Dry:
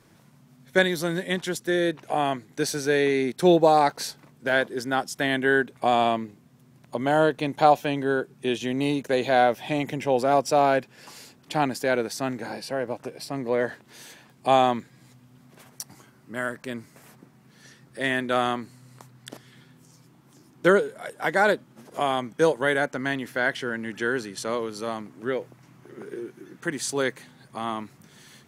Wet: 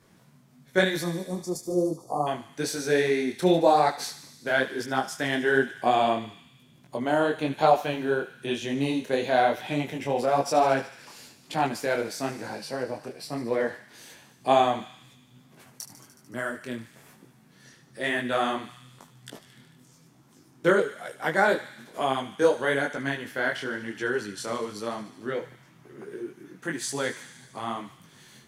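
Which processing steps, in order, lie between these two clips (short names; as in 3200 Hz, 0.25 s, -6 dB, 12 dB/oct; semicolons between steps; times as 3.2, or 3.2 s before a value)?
spectral delete 0.99–2.27, 1300–4300 Hz; thinning echo 74 ms, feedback 78%, high-pass 1200 Hz, level -12 dB; detuned doubles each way 36 cents; gain +1.5 dB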